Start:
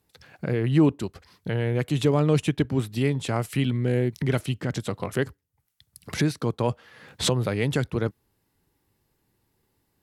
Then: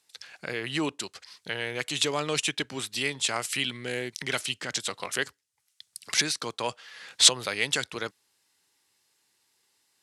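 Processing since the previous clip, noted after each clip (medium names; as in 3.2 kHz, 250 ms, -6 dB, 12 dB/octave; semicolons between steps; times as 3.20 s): frequency weighting ITU-R 468; trim -1 dB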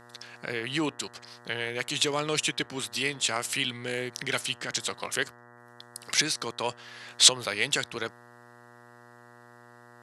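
mains buzz 120 Hz, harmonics 16, -53 dBFS -1 dB/octave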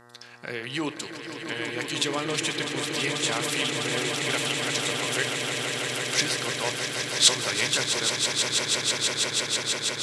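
echo with a slow build-up 163 ms, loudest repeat 8, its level -8.5 dB; on a send at -11 dB: reverberation RT60 0.40 s, pre-delay 3 ms; on the sum: trim -1 dB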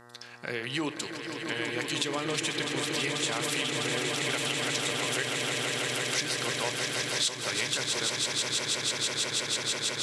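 compression 6:1, threshold -26 dBFS, peak gain reduction 13 dB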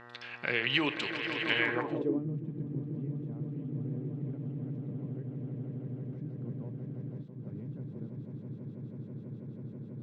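low-pass sweep 2.7 kHz -> 190 Hz, 1.56–2.27 s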